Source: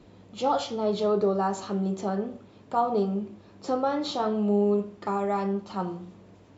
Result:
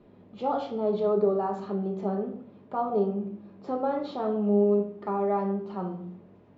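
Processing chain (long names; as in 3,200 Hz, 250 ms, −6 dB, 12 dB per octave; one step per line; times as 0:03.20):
low-pass filter 2,900 Hz 12 dB per octave
parametric band 420 Hz +6 dB 2.7 octaves
rectangular room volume 860 cubic metres, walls furnished, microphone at 1.3 metres
level −8 dB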